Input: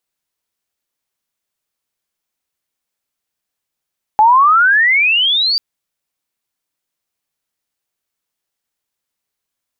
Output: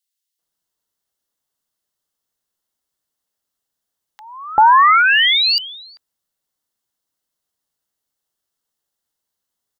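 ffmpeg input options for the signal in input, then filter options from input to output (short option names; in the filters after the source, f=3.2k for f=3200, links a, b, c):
-f lavfi -i "aevalsrc='pow(10,(-5-7*t/1.39)/20)*sin(2*PI*838*1.39/(30*log(2)/12)*(exp(30*log(2)/12*t/1.39)-1))':d=1.39:s=44100"
-filter_complex "[0:a]bandreject=f=2.4k:w=5.1,acrossover=split=2100[a][b];[a]adelay=390[c];[c][b]amix=inputs=2:normalize=0"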